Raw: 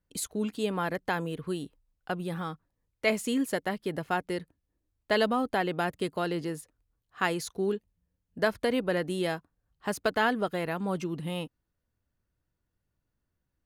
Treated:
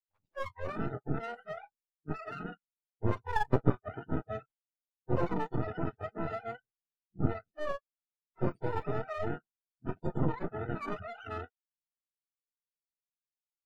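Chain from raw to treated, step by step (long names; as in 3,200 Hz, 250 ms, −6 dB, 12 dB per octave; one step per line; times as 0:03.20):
frequency axis turned over on the octave scale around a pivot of 480 Hz
0:03.30–0:03.85: transient designer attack +12 dB, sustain −1 dB
half-wave rectification
noise reduction from a noise print of the clip's start 28 dB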